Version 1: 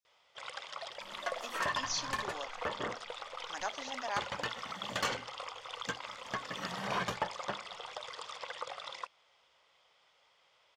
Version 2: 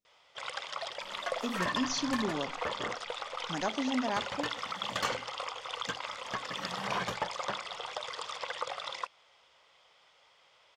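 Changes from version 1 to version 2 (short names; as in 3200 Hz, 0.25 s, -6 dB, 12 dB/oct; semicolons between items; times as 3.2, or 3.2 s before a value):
speech: remove HPF 840 Hz 12 dB/oct; first sound +5.0 dB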